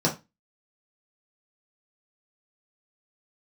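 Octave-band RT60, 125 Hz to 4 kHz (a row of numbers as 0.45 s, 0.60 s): 0.25 s, 0.30 s, 0.20 s, 0.25 s, 0.25 s, 0.20 s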